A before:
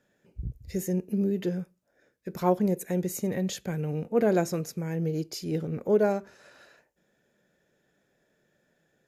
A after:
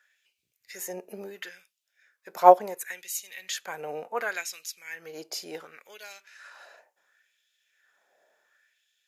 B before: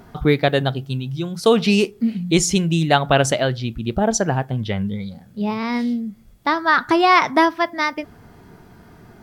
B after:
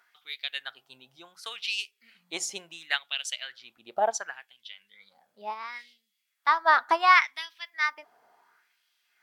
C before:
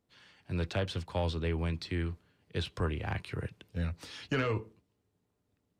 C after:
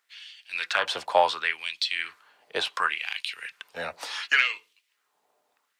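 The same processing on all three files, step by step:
LFO high-pass sine 0.7 Hz 670–3200 Hz; upward expander 1.5:1, over -27 dBFS; match loudness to -27 LUFS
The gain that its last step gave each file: +8.0, -6.0, +11.0 dB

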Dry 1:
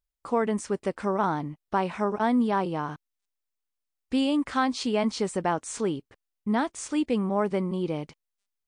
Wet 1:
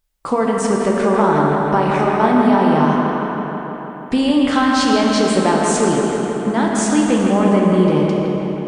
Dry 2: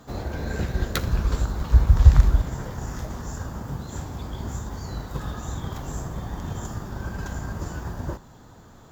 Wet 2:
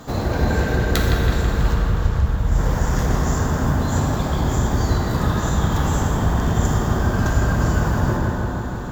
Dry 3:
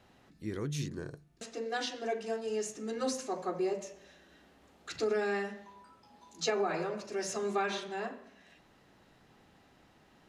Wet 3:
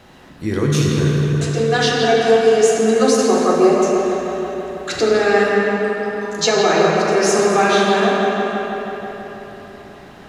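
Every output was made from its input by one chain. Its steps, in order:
compressor 6:1, threshold -28 dBFS; on a send: analogue delay 0.163 s, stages 4096, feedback 71%, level -5.5 dB; on the sum: plate-style reverb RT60 3.4 s, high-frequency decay 0.6×, DRR -0.5 dB; normalise peaks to -2 dBFS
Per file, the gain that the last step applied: +13.0, +10.0, +16.5 dB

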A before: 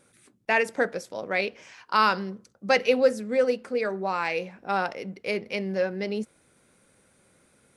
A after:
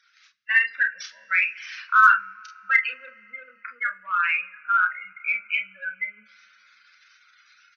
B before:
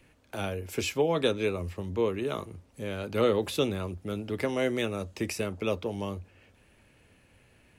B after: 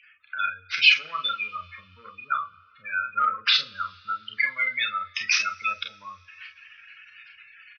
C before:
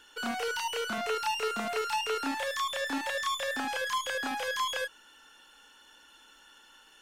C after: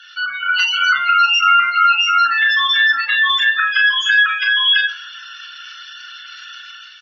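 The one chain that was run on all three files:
CVSD 32 kbps; AGC gain up to 7 dB; spectral gate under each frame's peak -15 dB strong; on a send: early reflections 33 ms -7.5 dB, 46 ms -9 dB; on the sum: two-slope reverb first 0.37 s, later 3.3 s, from -19 dB, DRR 13 dB; added harmonics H 7 -42 dB, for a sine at -2.5 dBFS; elliptic high-pass 1300 Hz, stop band 40 dB; normalise peaks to -3 dBFS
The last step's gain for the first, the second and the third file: +5.0, +13.5, +15.5 dB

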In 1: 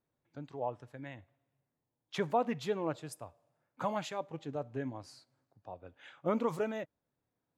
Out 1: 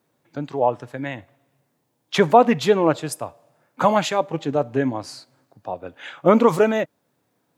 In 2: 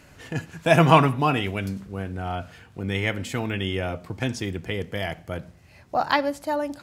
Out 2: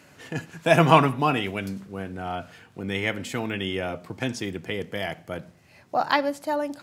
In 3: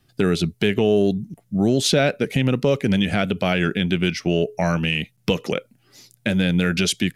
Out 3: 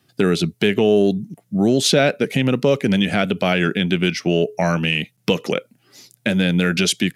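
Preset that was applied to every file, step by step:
HPF 140 Hz 12 dB/oct; normalise peaks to -1.5 dBFS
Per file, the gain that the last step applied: +17.5, -0.5, +3.0 dB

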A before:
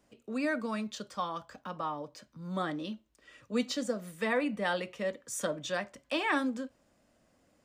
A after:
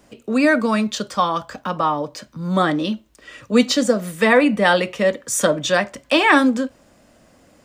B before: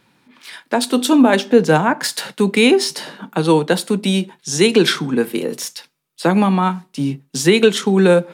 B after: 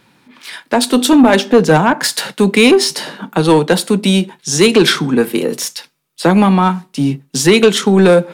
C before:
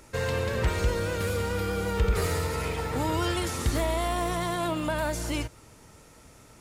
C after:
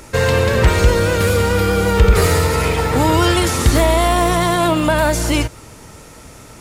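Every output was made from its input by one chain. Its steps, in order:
soft clip -7.5 dBFS; normalise peaks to -2 dBFS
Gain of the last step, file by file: +16.0, +6.0, +13.5 dB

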